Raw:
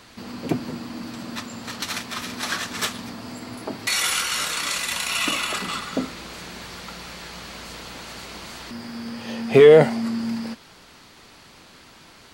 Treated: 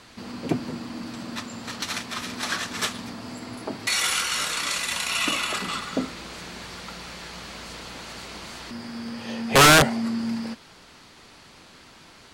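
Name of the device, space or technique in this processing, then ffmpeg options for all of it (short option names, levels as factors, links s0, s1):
overflowing digital effects unit: -af "aeval=exprs='(mod(2.37*val(0)+1,2)-1)/2.37':c=same,lowpass=12000,volume=0.891"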